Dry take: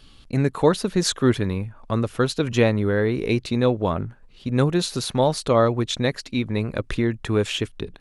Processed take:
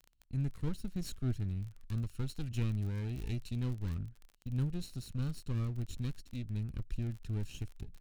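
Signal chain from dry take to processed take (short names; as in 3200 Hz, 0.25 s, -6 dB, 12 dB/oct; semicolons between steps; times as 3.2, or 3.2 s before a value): minimum comb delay 0.72 ms; gate -45 dBFS, range -18 dB; passive tone stack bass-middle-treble 10-0-1; crackle 25/s -43 dBFS; 1.81–4.06 mismatched tape noise reduction encoder only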